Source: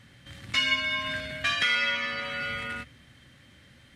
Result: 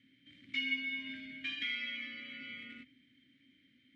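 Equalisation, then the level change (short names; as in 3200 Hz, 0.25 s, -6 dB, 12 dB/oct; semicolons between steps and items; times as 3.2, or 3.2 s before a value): vowel filter i; -1.0 dB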